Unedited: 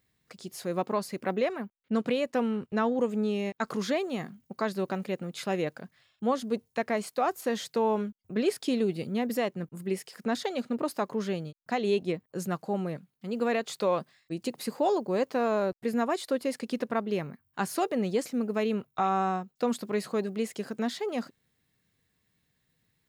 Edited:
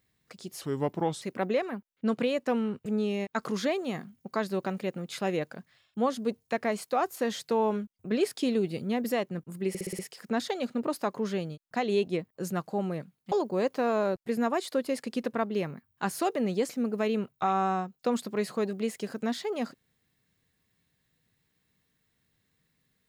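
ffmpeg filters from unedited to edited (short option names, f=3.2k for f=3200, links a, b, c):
-filter_complex "[0:a]asplit=10[a][b][c][d][e][f][g][h][i][j];[a]atrim=end=0.614[k];[b]atrim=start=0.61:end=1.09,asetpts=PTS-STARTPTS,asetrate=34839,aresample=44100[l];[c]atrim=start=1.086:end=2.732[m];[d]atrim=start=3.108:end=10.002[n];[e]atrim=start=9.938:end=10.002[o];[f]atrim=start=9.938:end=10.002[p];[g]atrim=start=9.938:end=10.002[q];[h]atrim=start=9.938:end=10.002[r];[i]atrim=start=9.938:end=13.272[s];[j]atrim=start=14.878[t];[k][l]acrossfade=d=0.004:c1=hsin:c2=hsin[u];[u][m]acrossfade=d=0.004:c1=hsin:c2=hsin[v];[v][n]acrossfade=d=0.004:c1=hsin:c2=hsin[w];[w][o]acrossfade=d=0.004:c1=hsin:c2=hsin[x];[x][p]acrossfade=d=0.004:c1=hsin:c2=hsin[y];[y][q]acrossfade=d=0.004:c1=hsin:c2=hsin[z];[z][r]acrossfade=d=0.004:c1=hsin:c2=hsin[aa];[aa][s]acrossfade=d=0.004:c1=hsin:c2=hsin[ab];[ab][t]acrossfade=d=0.004:c1=hsin:c2=hsin"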